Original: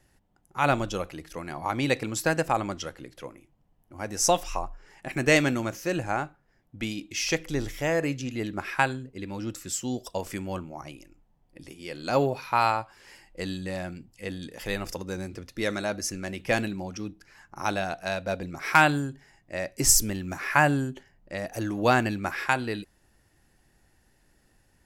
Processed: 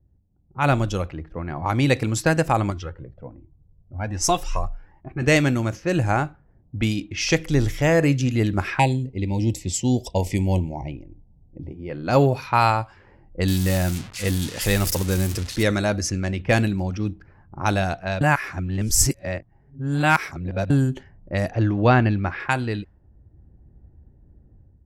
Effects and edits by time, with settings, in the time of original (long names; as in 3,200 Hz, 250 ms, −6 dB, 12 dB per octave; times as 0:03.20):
0:02.70–0:05.22: flanger whose copies keep moving one way rising 1.3 Hz
0:08.79–0:11.90: Chebyshev band-stop filter 930–2,000 Hz, order 3
0:13.48–0:15.63: spike at every zero crossing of −24 dBFS
0:18.21–0:20.70: reverse
0:21.51–0:22.40: Bessel low-pass filter 3,200 Hz, order 8
whole clip: automatic gain control gain up to 11 dB; parametric band 73 Hz +14 dB 2 octaves; low-pass that shuts in the quiet parts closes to 400 Hz, open at −14.5 dBFS; level −4 dB